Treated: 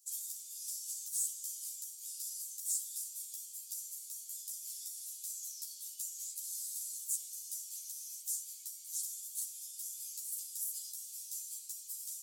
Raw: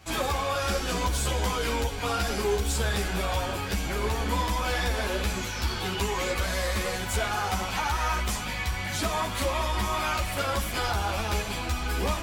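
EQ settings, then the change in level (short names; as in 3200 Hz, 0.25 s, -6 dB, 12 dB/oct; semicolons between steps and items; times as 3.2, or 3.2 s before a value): inverse Chebyshev high-pass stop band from 1300 Hz, stop band 80 dB; +1.5 dB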